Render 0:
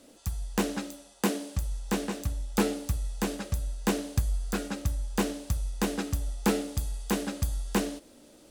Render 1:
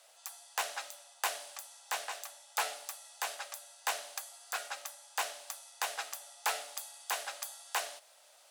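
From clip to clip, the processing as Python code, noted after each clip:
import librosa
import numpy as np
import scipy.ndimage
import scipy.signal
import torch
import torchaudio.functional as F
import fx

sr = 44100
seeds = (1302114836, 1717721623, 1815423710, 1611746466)

y = scipy.signal.sosfilt(scipy.signal.cheby1(4, 1.0, 680.0, 'highpass', fs=sr, output='sos'), x)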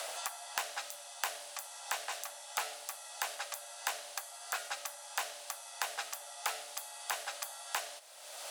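y = fx.band_squash(x, sr, depth_pct=100)
y = F.gain(torch.from_numpy(y), -1.0).numpy()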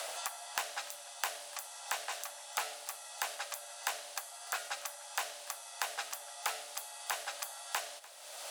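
y = x + 10.0 ** (-20.5 / 20.0) * np.pad(x, (int(295 * sr / 1000.0), 0))[:len(x)]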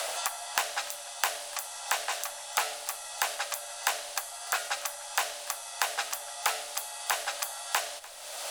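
y = fx.dmg_noise_colour(x, sr, seeds[0], colour='brown', level_db=-80.0)
y = F.gain(torch.from_numpy(y), 7.5).numpy()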